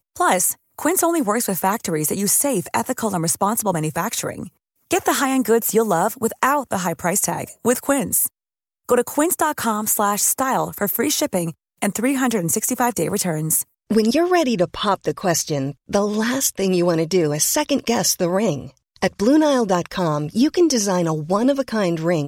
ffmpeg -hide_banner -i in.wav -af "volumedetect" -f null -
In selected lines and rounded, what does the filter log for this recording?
mean_volume: -20.0 dB
max_volume: -4.3 dB